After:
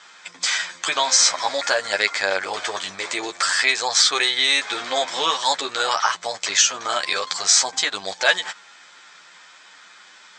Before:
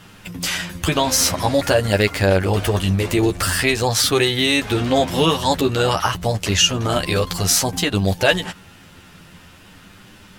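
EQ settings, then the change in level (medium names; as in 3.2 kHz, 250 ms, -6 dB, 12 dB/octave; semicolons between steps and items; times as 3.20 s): high-pass 1 kHz 12 dB/octave; steep low-pass 8.2 kHz 96 dB/octave; band-stop 2.8 kHz, Q 5.6; +3.0 dB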